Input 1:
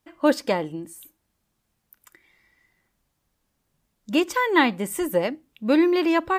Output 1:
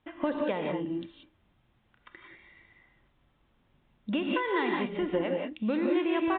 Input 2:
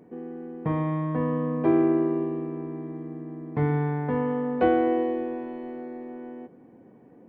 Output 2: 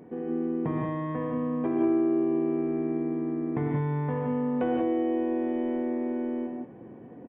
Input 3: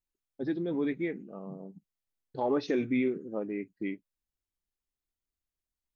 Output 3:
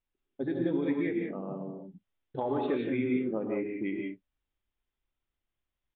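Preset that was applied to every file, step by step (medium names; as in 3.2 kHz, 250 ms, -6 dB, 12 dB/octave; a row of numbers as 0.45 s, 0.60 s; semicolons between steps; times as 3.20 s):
compression 5:1, threshold -33 dBFS; gated-style reverb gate 210 ms rising, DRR 0.5 dB; resampled via 8 kHz; trim +3.5 dB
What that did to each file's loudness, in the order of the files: -7.5 LU, -2.0 LU, +0.5 LU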